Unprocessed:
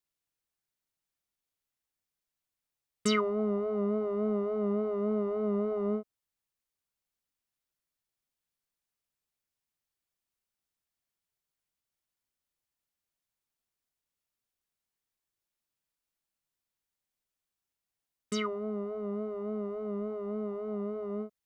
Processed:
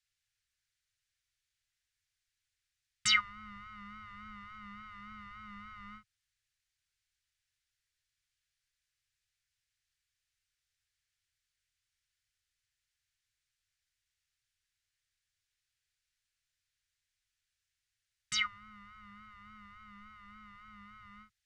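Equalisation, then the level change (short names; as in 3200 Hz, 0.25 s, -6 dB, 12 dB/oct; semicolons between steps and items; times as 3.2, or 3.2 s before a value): elliptic band-stop 110–1600 Hz, stop band 50 dB; LPF 6900 Hz 12 dB/oct; +8.0 dB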